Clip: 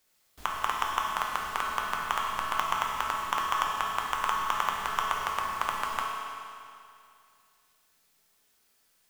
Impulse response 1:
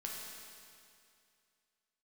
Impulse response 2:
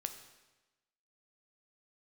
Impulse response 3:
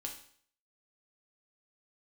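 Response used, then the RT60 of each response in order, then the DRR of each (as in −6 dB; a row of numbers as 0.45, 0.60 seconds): 1; 2.4, 1.1, 0.55 seconds; −2.5, 7.0, 1.0 decibels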